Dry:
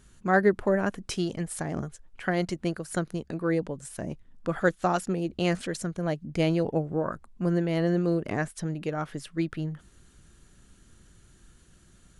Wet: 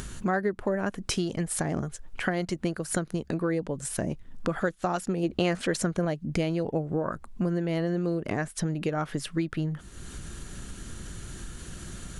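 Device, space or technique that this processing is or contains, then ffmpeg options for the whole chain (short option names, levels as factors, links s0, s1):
upward and downward compression: -filter_complex "[0:a]acompressor=mode=upward:threshold=0.0126:ratio=2.5,acompressor=threshold=0.02:ratio=5,asettb=1/sr,asplit=3[s0][s1][s2];[s0]atrim=end=5.234[s3];[s1]atrim=start=5.23:end=6.05,asetpts=PTS-STARTPTS,afade=t=in:d=0.004:c=qsin,afade=t=out:st=0.816:d=0.004:c=qsin,equalizer=f=1000:w=0.32:g=5[s4];[s2]atrim=start=6.046[s5];[s3][s4]acrossfade=d=0.004:c1=hsin:c2=qsin[s6];[s6][s5]acrossfade=d=0.004:c1=qsin:c2=hsin,volume=2.66"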